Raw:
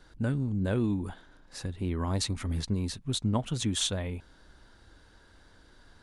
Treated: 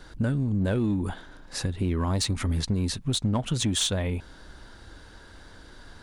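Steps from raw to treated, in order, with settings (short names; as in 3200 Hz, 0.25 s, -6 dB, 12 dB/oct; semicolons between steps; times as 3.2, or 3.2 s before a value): in parallel at -3.5 dB: hard clip -26.5 dBFS, distortion -13 dB; on the sum: compressor 2.5:1, threshold -30 dBFS, peak gain reduction 7 dB; gain +5 dB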